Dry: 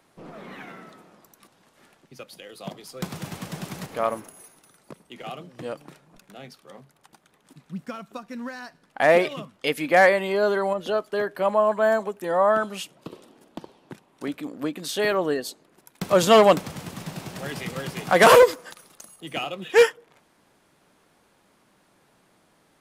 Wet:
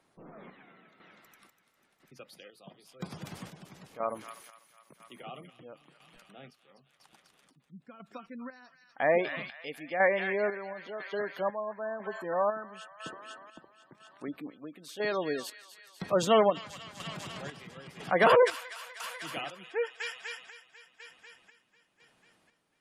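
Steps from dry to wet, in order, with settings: thin delay 0.247 s, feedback 69%, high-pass 1700 Hz, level -4 dB; chopper 1 Hz, depth 60%, duty 50%; spectral gate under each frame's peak -25 dB strong; gain -8 dB

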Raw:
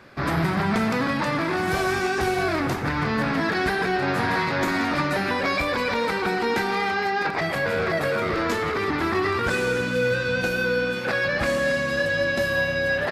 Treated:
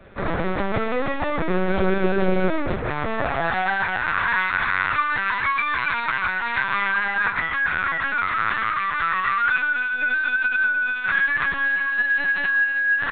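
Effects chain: high-pass sweep 380 Hz -> 1300 Hz, 2.76–4.12; LPC vocoder at 8 kHz pitch kept

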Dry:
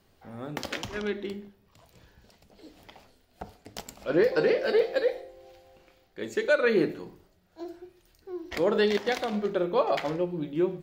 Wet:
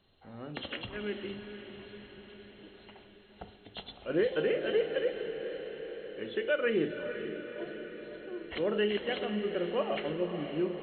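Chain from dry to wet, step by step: nonlinear frequency compression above 2700 Hz 4:1; dynamic EQ 910 Hz, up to -7 dB, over -44 dBFS, Q 1.9; diffused feedback echo 0.502 s, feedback 65%, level -9 dB; gain -5 dB

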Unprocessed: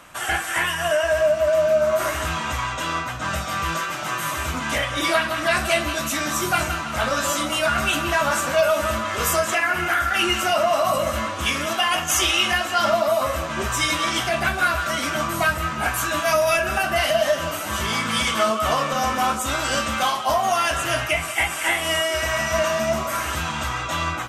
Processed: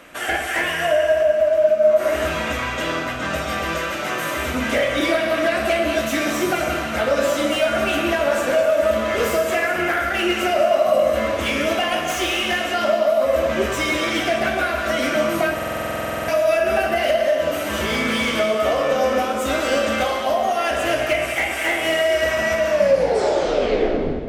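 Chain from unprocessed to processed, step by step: tape stop at the end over 1.63 s; dynamic EQ 550 Hz, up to +6 dB, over -31 dBFS, Q 1.1; compressor 8:1, threshold -20 dBFS, peak gain reduction 11 dB; ten-band EQ 125 Hz -6 dB, 250 Hz +6 dB, 500 Hz +8 dB, 1000 Hz -6 dB, 2000 Hz +5 dB, 8000 Hz -4 dB; echo with dull and thin repeats by turns 0.104 s, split 1200 Hz, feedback 65%, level -10 dB; on a send at -5.5 dB: reverb, pre-delay 32 ms; on the sum: stuck buffer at 15.54, samples 2048, times 15; slew limiter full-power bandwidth 280 Hz

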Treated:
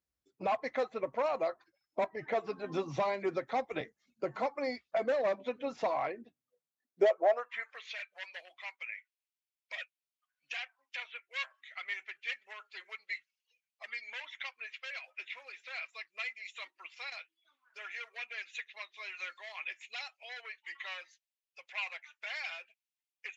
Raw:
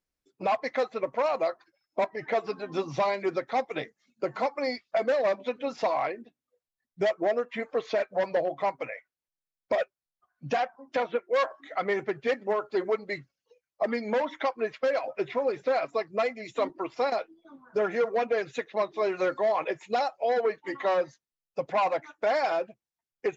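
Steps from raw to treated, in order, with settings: high-pass sweep 61 Hz -> 2500 Hz, 6.18–7.86; dynamic EQ 4900 Hz, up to -5 dB, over -59 dBFS, Q 3.5; 2.64–3.81 three-band squash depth 40%; gain -5.5 dB

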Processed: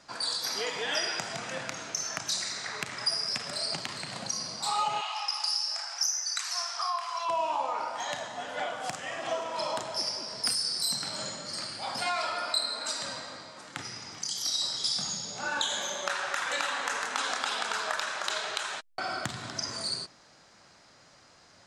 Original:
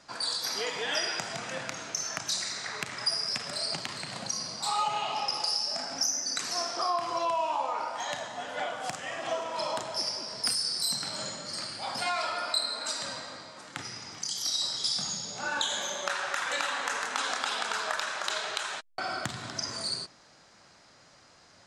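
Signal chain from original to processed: 5.01–7.29 HPF 890 Hz 24 dB/oct

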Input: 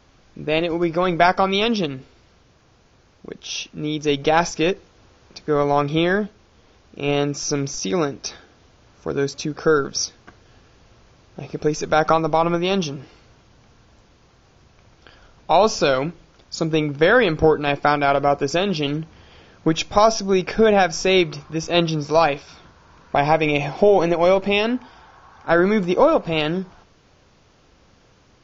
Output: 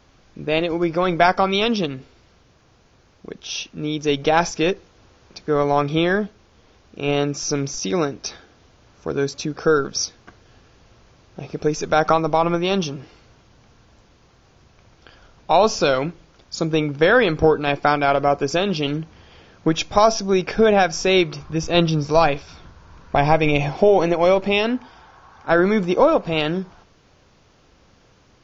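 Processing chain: 21.4–23.77 low shelf 110 Hz +11.5 dB

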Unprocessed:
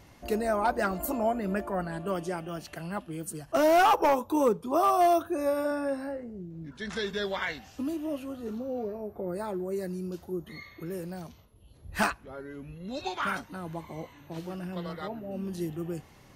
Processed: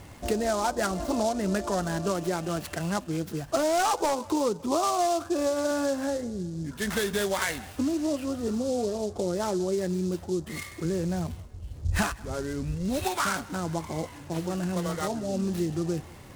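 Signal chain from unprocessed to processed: 10.85–13.04 low shelf 140 Hz +10 dB; compressor 6:1, threshold -31 dBFS, peak gain reduction 11.5 dB; steep low-pass 6500 Hz 96 dB/oct; bell 87 Hz +7 dB 0.33 oct; thinning echo 0.186 s, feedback 60%, high-pass 400 Hz, level -22.5 dB; noise-modulated delay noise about 5600 Hz, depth 0.046 ms; gain +7.5 dB

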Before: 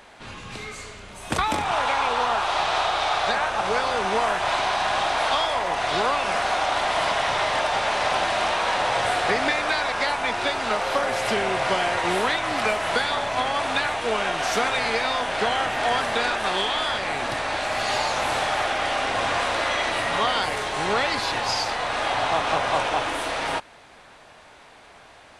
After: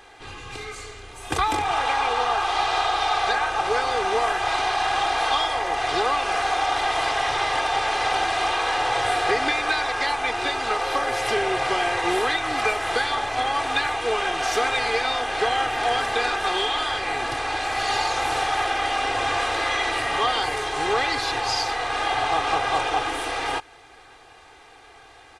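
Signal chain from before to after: comb 2.5 ms, depth 77%; gain -2 dB

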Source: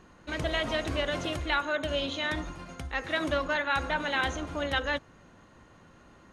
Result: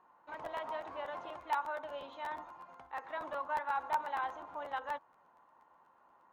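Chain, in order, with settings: band-pass 920 Hz, Q 4.7; crackling interface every 0.12 s, samples 512, repeat, from 0.32; gain +1.5 dB

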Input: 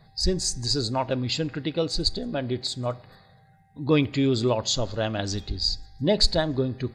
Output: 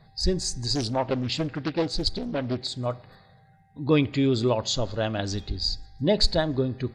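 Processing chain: high shelf 6800 Hz -7 dB; 0.75–2.78 Doppler distortion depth 0.55 ms

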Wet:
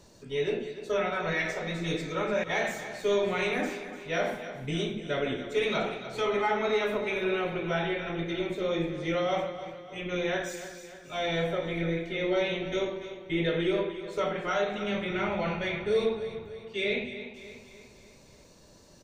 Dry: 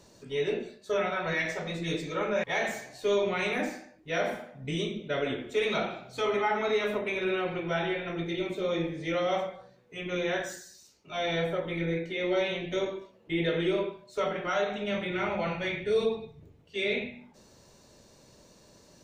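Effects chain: low shelf 62 Hz +8.5 dB; on a send: feedback echo 0.296 s, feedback 50%, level -12 dB

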